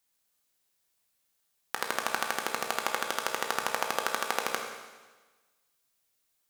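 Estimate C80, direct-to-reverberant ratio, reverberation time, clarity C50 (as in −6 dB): 6.0 dB, 2.0 dB, 1.3 s, 4.5 dB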